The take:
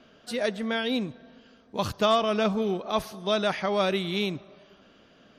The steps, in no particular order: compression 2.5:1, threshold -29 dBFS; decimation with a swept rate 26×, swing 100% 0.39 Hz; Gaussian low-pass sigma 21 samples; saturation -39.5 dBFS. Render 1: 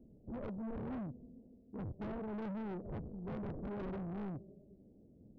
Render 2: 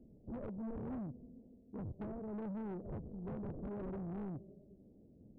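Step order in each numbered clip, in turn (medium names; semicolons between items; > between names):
decimation with a swept rate > Gaussian low-pass > saturation > compression; compression > decimation with a swept rate > Gaussian low-pass > saturation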